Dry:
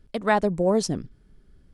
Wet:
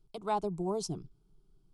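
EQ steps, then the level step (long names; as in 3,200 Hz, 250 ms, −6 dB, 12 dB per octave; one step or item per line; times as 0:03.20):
phaser with its sweep stopped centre 360 Hz, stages 8
−8.0 dB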